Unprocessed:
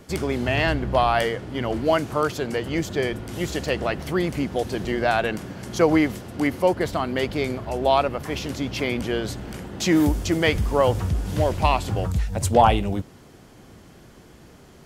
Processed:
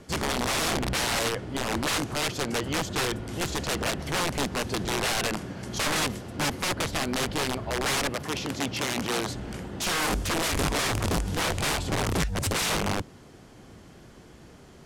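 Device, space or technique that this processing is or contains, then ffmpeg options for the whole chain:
overflowing digital effects unit: -filter_complex "[0:a]aeval=exprs='(mod(9.44*val(0)+1,2)-1)/9.44':c=same,lowpass=11000,asettb=1/sr,asplit=3[s0][s1][s2];[s0]atrim=end=8.094[s3];[s1]atrim=start=8.09:end=9.35,asetpts=PTS-STARTPTS,afade=t=in:d=0.004:c=qsin,afade=t=out:st=1.256:d=0.004:c=qsin,highpass=98[s4];[s2]atrim=start=9.346[s5];[s3][s4]acrossfade=d=0.004:c1=hsin:c2=qsin[s6];[s6][s5]acrossfade=d=0.004:c1=qsin:c2=hsin,volume=0.841"

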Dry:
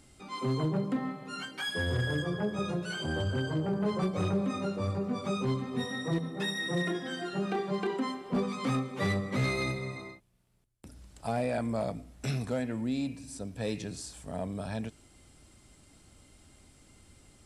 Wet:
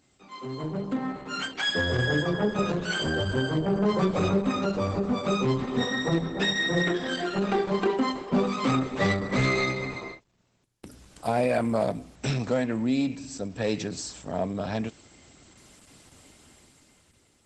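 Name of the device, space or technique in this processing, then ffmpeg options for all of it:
video call: -af "highpass=f=170:p=1,dynaudnorm=f=150:g=13:m=3.98,volume=0.668" -ar 48000 -c:a libopus -b:a 12k

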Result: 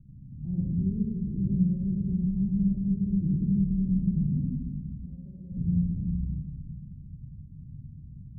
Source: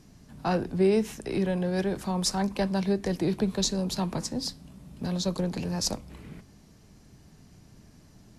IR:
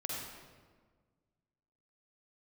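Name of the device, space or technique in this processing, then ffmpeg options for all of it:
club heard from the street: -filter_complex "[0:a]asettb=1/sr,asplit=3[s0][s1][s2];[s0]atrim=end=4.954[s3];[s1]atrim=start=4.95:end=5.52,asetpts=PTS-STARTPTS,afade=t=in:d=0.004:c=qsin,afade=t=out:st=0.566:d=0.004:c=qsin,highpass=550[s4];[s2]atrim=start=5.516[s5];[s3][s4]acrossfade=d=0.004:c1=hsin:c2=qsin[s6];[s6][s5]acrossfade=d=0.004:c1=qsin:c2=hsin,alimiter=limit=0.0944:level=0:latency=1,lowpass=f=170:w=0.5412,lowpass=f=170:w=1.3066[s7];[1:a]atrim=start_sample=2205[s8];[s7][s8]afir=irnorm=-1:irlink=0,volume=2.66"

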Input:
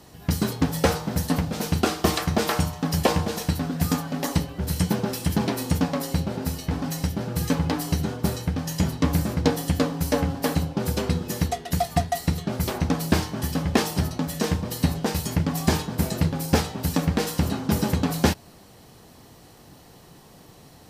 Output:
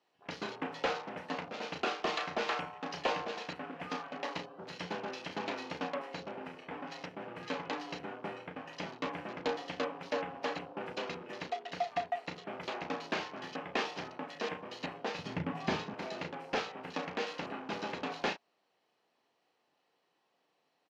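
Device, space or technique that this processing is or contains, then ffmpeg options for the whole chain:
intercom: -filter_complex "[0:a]highpass=f=72:w=0.5412,highpass=f=72:w=1.3066,highpass=470,lowpass=3800,equalizer=f=2600:t=o:w=0.48:g=4.5,asoftclip=type=tanh:threshold=0.168,asplit=2[s0][s1];[s1]adelay=34,volume=0.398[s2];[s0][s2]amix=inputs=2:normalize=0,afwtdn=0.00794,asettb=1/sr,asplit=3[s3][s4][s5];[s3]atrim=end=15.194[s6];[s4]atrim=start=15.19:end=15.94,asetpts=PTS-STARTPTS,afade=t=in:d=0.004:c=qsin,afade=t=out:st=0.746:d=0.004:c=qsin,bass=f=250:g=14,treble=f=4000:g=-1[s7];[s5]atrim=start=15.936[s8];[s6][s7]acrossfade=d=0.004:c1=hsin:c2=qsin[s9];[s9][s8]acrossfade=d=0.004:c1=qsin:c2=hsin,volume=0.447"

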